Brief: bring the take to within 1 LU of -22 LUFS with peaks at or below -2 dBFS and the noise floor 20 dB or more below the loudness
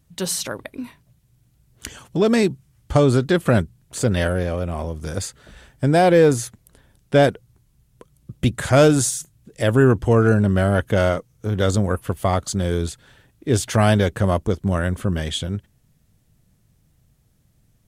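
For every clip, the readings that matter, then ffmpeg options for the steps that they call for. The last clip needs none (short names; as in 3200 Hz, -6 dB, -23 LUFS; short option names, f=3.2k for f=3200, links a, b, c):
loudness -20.0 LUFS; peak -4.5 dBFS; loudness target -22.0 LUFS
-> -af "volume=-2dB"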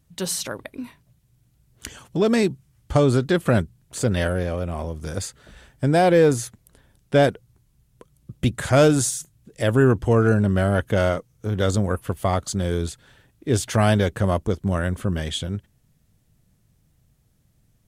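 loudness -22.0 LUFS; peak -6.5 dBFS; noise floor -63 dBFS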